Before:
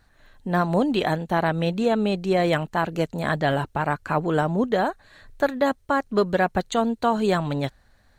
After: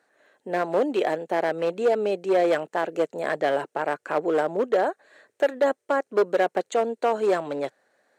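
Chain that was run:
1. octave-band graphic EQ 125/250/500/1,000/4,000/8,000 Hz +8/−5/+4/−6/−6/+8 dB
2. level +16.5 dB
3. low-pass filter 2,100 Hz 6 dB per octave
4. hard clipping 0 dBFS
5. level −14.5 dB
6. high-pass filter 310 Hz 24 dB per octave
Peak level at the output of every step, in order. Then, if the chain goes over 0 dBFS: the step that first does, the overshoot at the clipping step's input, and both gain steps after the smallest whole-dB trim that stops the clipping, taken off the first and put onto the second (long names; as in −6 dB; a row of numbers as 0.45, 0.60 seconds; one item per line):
−9.0, +7.5, +7.0, 0.0, −14.5, −9.5 dBFS
step 2, 7.0 dB
step 2 +9.5 dB, step 5 −7.5 dB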